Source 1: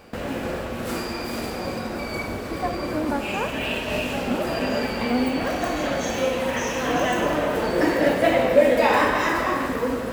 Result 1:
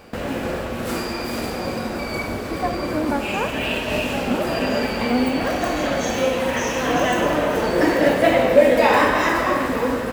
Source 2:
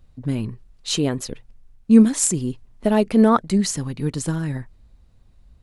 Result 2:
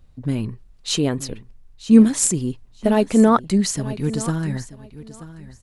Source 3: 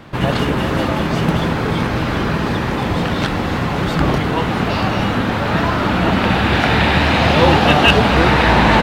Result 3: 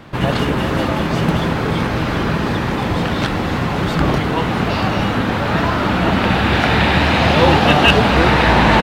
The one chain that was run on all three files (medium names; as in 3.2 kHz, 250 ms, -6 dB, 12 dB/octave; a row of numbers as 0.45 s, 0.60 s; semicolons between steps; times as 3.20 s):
feedback delay 933 ms, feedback 18%, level -16 dB; peak normalisation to -1.5 dBFS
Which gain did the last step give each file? +3.0 dB, +1.0 dB, 0.0 dB